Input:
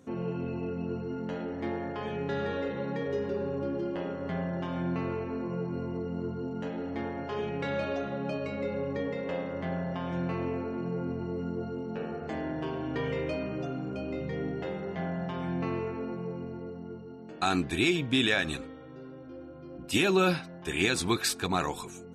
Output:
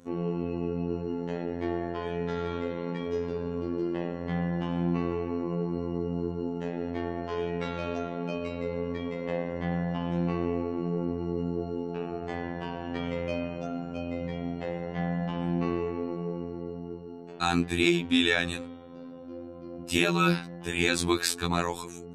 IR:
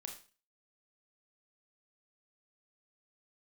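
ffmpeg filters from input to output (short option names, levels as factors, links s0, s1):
-af "afftfilt=real='hypot(re,im)*cos(PI*b)':imag='0':win_size=2048:overlap=0.75,volume=1.68"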